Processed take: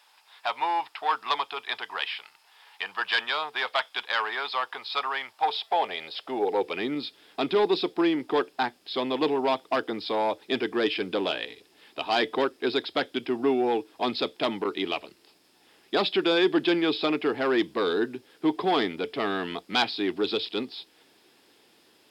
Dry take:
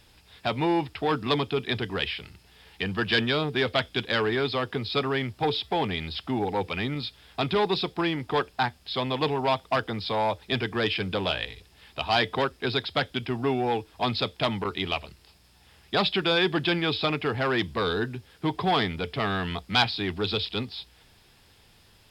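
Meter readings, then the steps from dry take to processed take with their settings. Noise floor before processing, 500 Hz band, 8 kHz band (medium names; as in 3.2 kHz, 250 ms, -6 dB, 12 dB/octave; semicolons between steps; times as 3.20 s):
-58 dBFS, +1.0 dB, no reading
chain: high-pass sweep 920 Hz -> 310 Hz, 5.28–6.94 s; saturation -7 dBFS, distortion -31 dB; trim -2 dB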